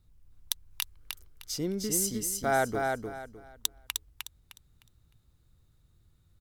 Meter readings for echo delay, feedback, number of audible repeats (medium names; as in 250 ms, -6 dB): 306 ms, 26%, 3